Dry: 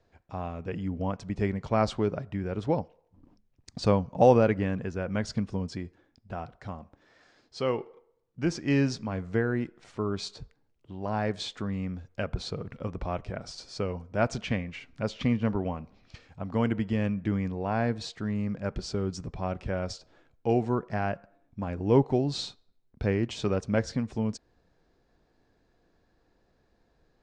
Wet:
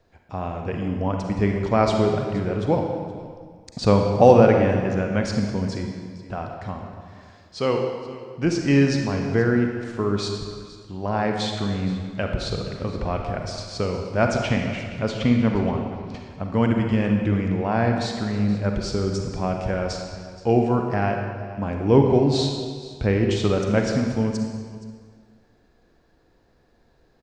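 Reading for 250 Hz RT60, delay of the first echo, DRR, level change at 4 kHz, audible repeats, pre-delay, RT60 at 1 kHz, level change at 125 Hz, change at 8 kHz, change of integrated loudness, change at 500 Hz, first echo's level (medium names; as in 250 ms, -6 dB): 1.8 s, 472 ms, 2.5 dB, +7.5 dB, 1, 36 ms, 1.8 s, +7.5 dB, +7.0 dB, +7.5 dB, +7.5 dB, -18.5 dB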